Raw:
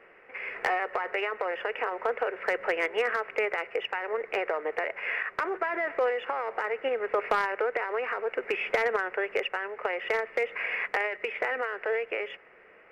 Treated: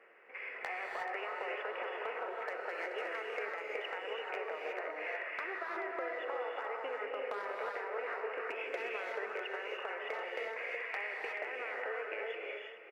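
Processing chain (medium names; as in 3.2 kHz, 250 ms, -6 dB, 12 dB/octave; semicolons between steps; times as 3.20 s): high-pass 330 Hz 12 dB/octave; compression 6:1, threshold -33 dBFS, peak gain reduction 11.5 dB; delay 431 ms -11.5 dB; gated-style reverb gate 390 ms rising, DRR -1.5 dB; trim -6.5 dB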